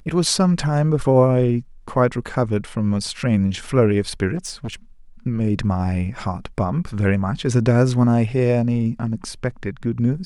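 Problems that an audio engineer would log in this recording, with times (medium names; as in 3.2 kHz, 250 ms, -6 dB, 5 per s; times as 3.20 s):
4.36–4.74 s: clipped -23.5 dBFS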